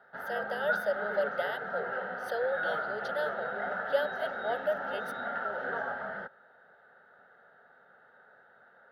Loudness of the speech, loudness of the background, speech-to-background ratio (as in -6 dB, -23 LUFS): -35.5 LUFS, -35.0 LUFS, -0.5 dB